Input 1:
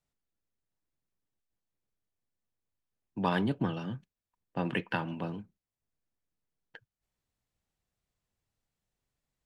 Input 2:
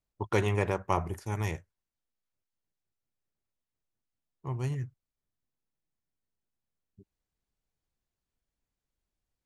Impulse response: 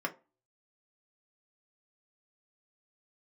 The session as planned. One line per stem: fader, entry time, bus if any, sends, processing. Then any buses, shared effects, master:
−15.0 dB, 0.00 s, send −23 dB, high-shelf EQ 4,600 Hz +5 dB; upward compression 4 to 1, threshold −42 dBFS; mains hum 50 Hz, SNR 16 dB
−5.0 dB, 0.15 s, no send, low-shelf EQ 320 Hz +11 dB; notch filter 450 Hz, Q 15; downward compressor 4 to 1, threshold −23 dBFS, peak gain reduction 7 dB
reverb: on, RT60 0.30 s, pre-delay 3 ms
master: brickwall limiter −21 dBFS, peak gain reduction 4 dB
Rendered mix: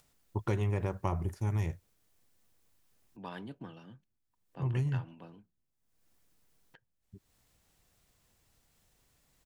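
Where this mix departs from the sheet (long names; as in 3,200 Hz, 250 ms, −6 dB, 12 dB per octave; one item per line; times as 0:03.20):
stem 1: missing mains hum 50 Hz, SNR 16 dB
master: missing brickwall limiter −21 dBFS, peak gain reduction 4 dB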